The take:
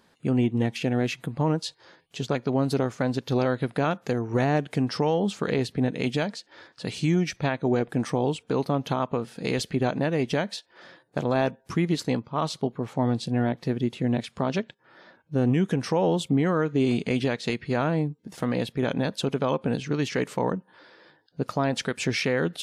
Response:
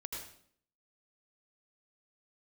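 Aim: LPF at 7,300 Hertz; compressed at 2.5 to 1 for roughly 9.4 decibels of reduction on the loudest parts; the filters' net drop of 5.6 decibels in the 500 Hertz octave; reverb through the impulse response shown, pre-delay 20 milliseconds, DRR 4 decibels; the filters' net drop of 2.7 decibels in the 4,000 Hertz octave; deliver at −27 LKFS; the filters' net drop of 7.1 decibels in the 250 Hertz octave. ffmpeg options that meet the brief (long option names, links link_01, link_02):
-filter_complex "[0:a]lowpass=7300,equalizer=frequency=250:width_type=o:gain=-8,equalizer=frequency=500:width_type=o:gain=-4.5,equalizer=frequency=4000:width_type=o:gain=-3,acompressor=threshold=-38dB:ratio=2.5,asplit=2[link_01][link_02];[1:a]atrim=start_sample=2205,adelay=20[link_03];[link_02][link_03]afir=irnorm=-1:irlink=0,volume=-3dB[link_04];[link_01][link_04]amix=inputs=2:normalize=0,volume=11.5dB"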